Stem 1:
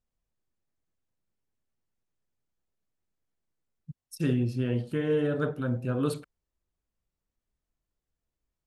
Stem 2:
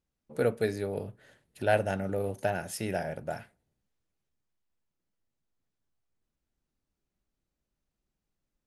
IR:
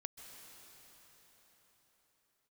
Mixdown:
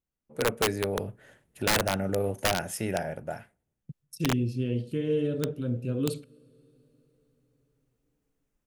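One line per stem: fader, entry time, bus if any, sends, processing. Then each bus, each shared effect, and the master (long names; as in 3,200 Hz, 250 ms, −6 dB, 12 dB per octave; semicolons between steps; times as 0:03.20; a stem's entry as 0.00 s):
−1.0 dB, 0.00 s, send −18 dB, noise gate with hold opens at −39 dBFS; flat-topped bell 1,100 Hz −13 dB
−6.0 dB, 0.00 s, no send, parametric band 4,300 Hz −7.5 dB 0.61 octaves; automatic gain control gain up to 11 dB; automatic ducking −9 dB, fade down 1.35 s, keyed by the first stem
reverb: on, pre-delay 123 ms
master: wrap-around overflow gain 17.5 dB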